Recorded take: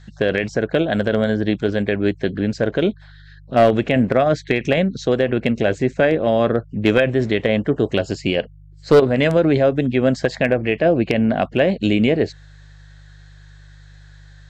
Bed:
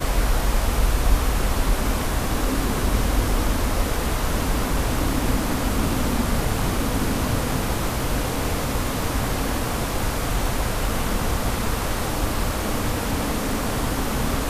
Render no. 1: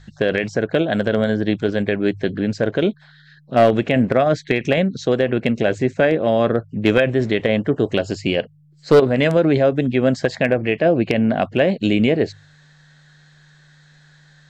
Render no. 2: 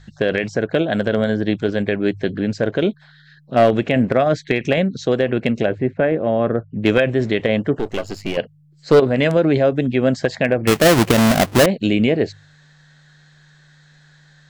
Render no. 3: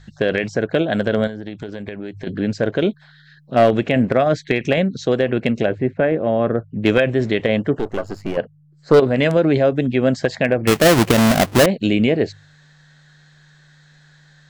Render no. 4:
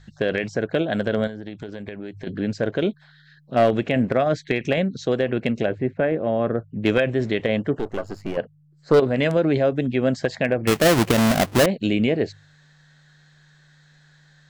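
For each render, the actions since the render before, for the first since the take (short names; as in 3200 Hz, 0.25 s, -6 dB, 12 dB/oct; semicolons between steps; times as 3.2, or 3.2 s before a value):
de-hum 50 Hz, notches 2
5.66–6.83 air absorption 480 m; 7.79–8.37 half-wave gain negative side -12 dB; 10.67–11.66 half-waves squared off
1.27–2.27 compressor 12:1, threshold -25 dBFS; 7.85–8.94 resonant high shelf 1900 Hz -7.5 dB, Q 1.5
gain -4 dB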